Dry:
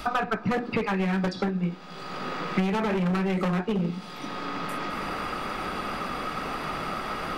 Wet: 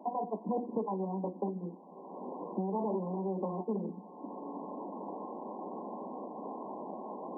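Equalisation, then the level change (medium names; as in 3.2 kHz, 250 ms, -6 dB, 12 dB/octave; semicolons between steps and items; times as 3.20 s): steep high-pass 200 Hz 48 dB/octave; brick-wall FIR low-pass 1.1 kHz; -5.5 dB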